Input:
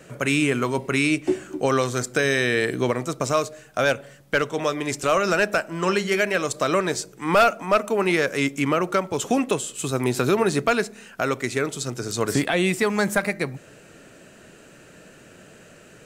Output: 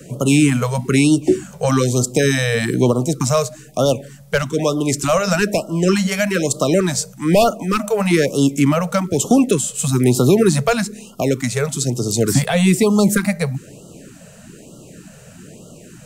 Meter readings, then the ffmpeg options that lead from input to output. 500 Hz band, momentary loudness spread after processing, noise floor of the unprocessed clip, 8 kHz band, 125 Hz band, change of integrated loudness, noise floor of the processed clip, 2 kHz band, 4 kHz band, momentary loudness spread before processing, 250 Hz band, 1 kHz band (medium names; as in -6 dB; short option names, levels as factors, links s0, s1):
+4.5 dB, 7 LU, -49 dBFS, +9.0 dB, +11.5 dB, +5.5 dB, -42 dBFS, -0.5 dB, +4.5 dB, 6 LU, +9.0 dB, +1.0 dB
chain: -filter_complex "[0:a]bass=f=250:g=9,treble=f=4000:g=10,acrossover=split=140|780|2300[s0][s1][s2][s3];[s1]acontrast=72[s4];[s0][s4][s2][s3]amix=inputs=4:normalize=0,afftfilt=real='re*(1-between(b*sr/1024,280*pow(2000/280,0.5+0.5*sin(2*PI*1.1*pts/sr))/1.41,280*pow(2000/280,0.5+0.5*sin(2*PI*1.1*pts/sr))*1.41))':imag='im*(1-between(b*sr/1024,280*pow(2000/280,0.5+0.5*sin(2*PI*1.1*pts/sr))/1.41,280*pow(2000/280,0.5+0.5*sin(2*PI*1.1*pts/sr))*1.41))':win_size=1024:overlap=0.75"